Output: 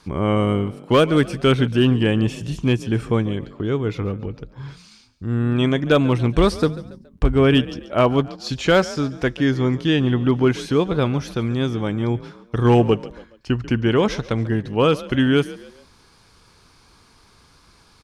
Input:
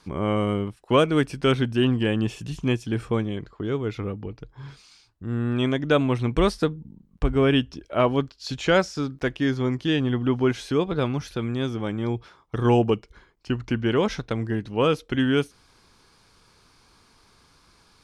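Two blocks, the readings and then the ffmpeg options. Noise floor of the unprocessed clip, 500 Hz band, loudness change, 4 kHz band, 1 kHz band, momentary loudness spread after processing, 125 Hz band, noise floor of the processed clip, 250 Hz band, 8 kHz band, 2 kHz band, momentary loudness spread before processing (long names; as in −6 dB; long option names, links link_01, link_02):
−59 dBFS, +4.0 dB, +4.5 dB, +4.0 dB, +3.5 dB, 10 LU, +6.0 dB, −54 dBFS, +4.5 dB, +4.0 dB, +3.5 dB, 10 LU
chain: -filter_complex "[0:a]equalizer=frequency=67:width=0.59:gain=3,asoftclip=type=hard:threshold=-11dB,asplit=2[link_01][link_02];[link_02]asplit=3[link_03][link_04][link_05];[link_03]adelay=140,afreqshift=38,volume=-18dB[link_06];[link_04]adelay=280,afreqshift=76,volume=-25.7dB[link_07];[link_05]adelay=420,afreqshift=114,volume=-33.5dB[link_08];[link_06][link_07][link_08]amix=inputs=3:normalize=0[link_09];[link_01][link_09]amix=inputs=2:normalize=0,volume=4dB"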